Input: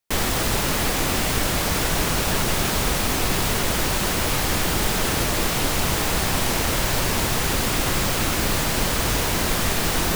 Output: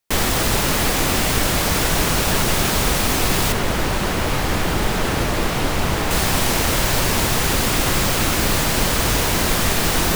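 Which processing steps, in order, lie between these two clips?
0:03.52–0:06.11: high-shelf EQ 3,800 Hz −9.5 dB
level +3.5 dB

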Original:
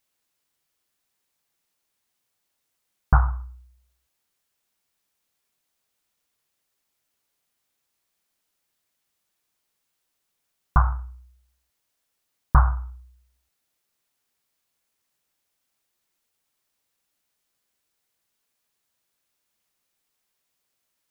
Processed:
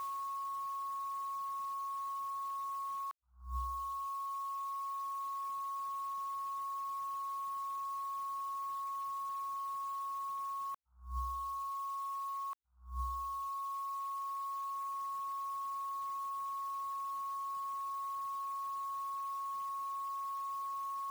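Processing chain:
reverb reduction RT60 1.9 s
steady tone 1,100 Hz −58 dBFS
compressor whose output falls as the input rises −56 dBFS, ratio −0.5
level +7 dB

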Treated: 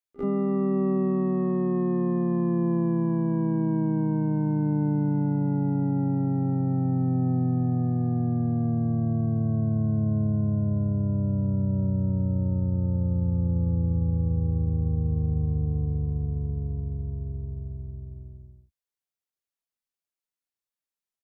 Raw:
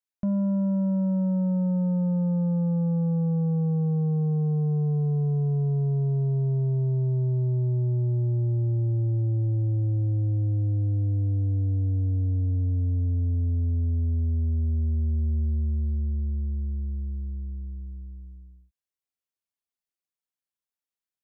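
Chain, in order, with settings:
pitch-shifted copies added −4 semitones −13 dB, +5 semitones −5 dB, +12 semitones −2 dB
echo ahead of the sound 47 ms −20 dB
level −3.5 dB

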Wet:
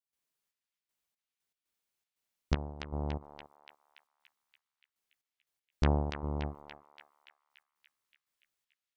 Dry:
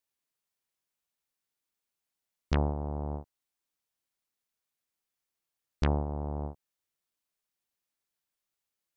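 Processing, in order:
gate pattern ".xxx...xx..x.xxx" 118 BPM −12 dB
on a send: feedback echo with a band-pass in the loop 287 ms, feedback 69%, band-pass 2,600 Hz, level −3 dB

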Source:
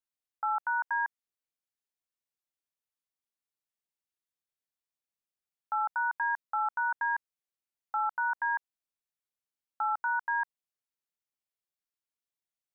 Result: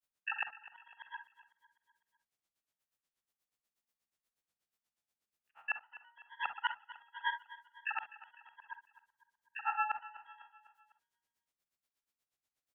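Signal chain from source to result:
spectrum averaged block by block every 200 ms
pitch-shifted copies added +12 semitones −7 dB
granular cloud 100 ms, grains 8.3 per second, pitch spread up and down by 0 semitones
gate with flip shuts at −30 dBFS, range −39 dB
repeating echo 251 ms, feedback 51%, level −17 dB
convolution reverb, pre-delay 38 ms, DRR 9 dB
level +9 dB

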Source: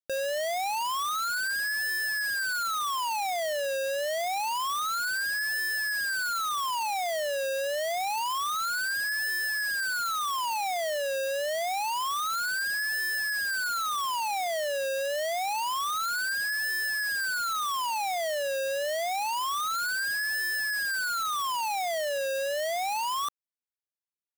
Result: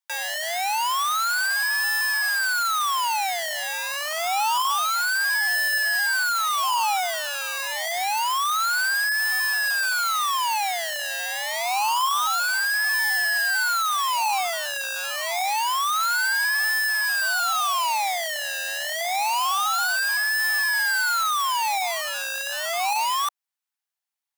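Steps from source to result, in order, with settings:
in parallel at −7 dB: sample-and-hold swept by an LFO 29×, swing 60% 0.39 Hz
on the sum: Butterworth high-pass 750 Hz 48 dB per octave
level +6.5 dB

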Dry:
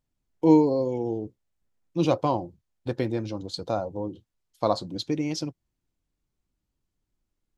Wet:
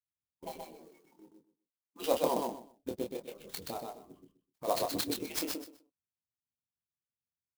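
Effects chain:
harmonic-percussive split with one part muted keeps percussive
0:00.73–0:02.14: high-pass filter 280 Hz 12 dB per octave
noise gate −54 dBFS, range −15 dB
high-shelf EQ 3,400 Hz +6 dB
0:02.89–0:04.68: output level in coarse steps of 11 dB
phaser swept by the level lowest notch 520 Hz, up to 1,900 Hz, full sweep at −31.5 dBFS
double-tracking delay 25 ms −5 dB
repeating echo 126 ms, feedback 20%, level −3.5 dB
converter with an unsteady clock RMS 0.04 ms
level −4 dB

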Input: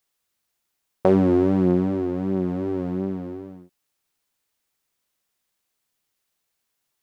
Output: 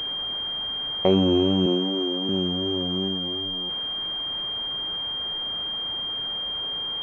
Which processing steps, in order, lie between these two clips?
linear delta modulator 64 kbit/s, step −30 dBFS
0:01.66–0:02.29: high-pass filter 210 Hz 24 dB per octave
switching amplifier with a slow clock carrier 3,200 Hz
level −2 dB

